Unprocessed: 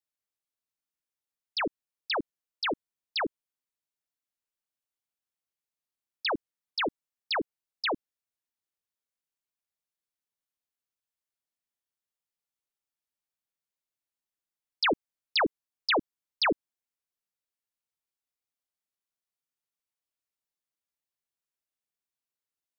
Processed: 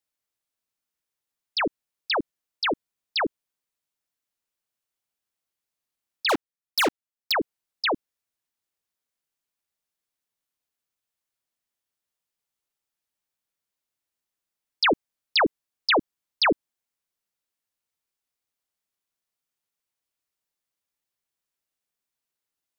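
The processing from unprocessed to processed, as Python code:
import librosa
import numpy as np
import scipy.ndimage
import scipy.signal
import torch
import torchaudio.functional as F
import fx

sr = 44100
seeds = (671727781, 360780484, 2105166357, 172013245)

y = fx.leveller(x, sr, passes=5, at=(6.29, 7.32))
y = y * 10.0 ** (5.0 / 20.0)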